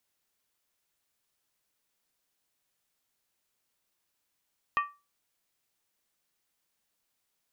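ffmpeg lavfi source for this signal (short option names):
-f lavfi -i "aevalsrc='0.0891*pow(10,-3*t/0.28)*sin(2*PI*1160*t)+0.0447*pow(10,-3*t/0.222)*sin(2*PI*1849*t)+0.0224*pow(10,-3*t/0.192)*sin(2*PI*2477.8*t)+0.0112*pow(10,-3*t/0.185)*sin(2*PI*2663.4*t)+0.00562*pow(10,-3*t/0.172)*sin(2*PI*3077.5*t)':d=0.63:s=44100"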